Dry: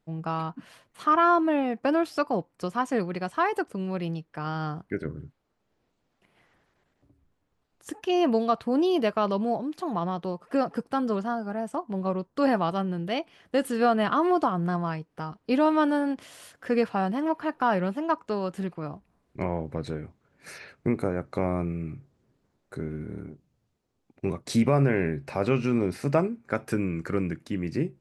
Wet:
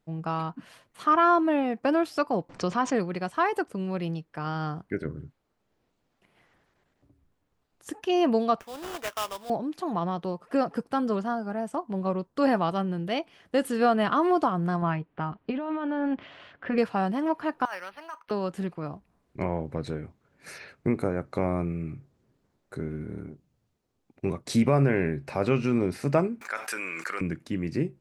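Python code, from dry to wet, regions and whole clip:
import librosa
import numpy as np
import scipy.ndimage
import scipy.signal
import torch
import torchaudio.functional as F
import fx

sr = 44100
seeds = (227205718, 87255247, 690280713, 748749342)

y = fx.chain(x, sr, fx.lowpass(hz=6400.0, slope=24),
    fx.env_flatten(amount_pct=50), at=(2.49, 2.95))
y = fx.chain(y, sr, fx.bessel_highpass(hz=1200.0, order=2),
    fx.sample_hold(seeds[0], rate_hz=4300.0, jitter_pct=20), at=(8.6, 9.5))
y = fx.chain(y, sr, fx.lowpass(hz=3200.0, slope=24),
    fx.notch(hz=480.0, q=8.6),
    fx.over_compress(threshold_db=-28.0, ratio=-1.0), at=(14.82, 16.78))
y = fx.chain(y, sr, fx.highpass(hz=1400.0, slope=12),
    fx.over_compress(threshold_db=-35.0, ratio=-1.0),
    fx.resample_linear(factor=6), at=(17.65, 18.31))
y = fx.chain(y, sr, fx.highpass(hz=1200.0, slope=12),
    fx.env_flatten(amount_pct=70), at=(26.41, 27.21))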